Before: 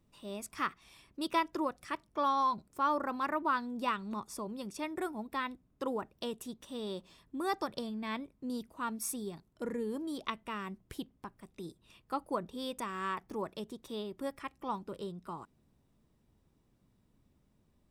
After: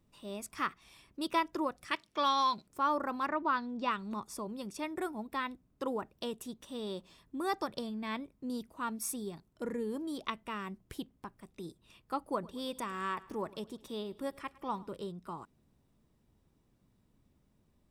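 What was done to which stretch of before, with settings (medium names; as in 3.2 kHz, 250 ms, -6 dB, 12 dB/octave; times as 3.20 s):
1.91–2.67 s: frequency weighting D
3.27–3.91 s: low-pass 6 kHz 24 dB/octave
12.17–14.88 s: feedback delay 107 ms, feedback 53%, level -21.5 dB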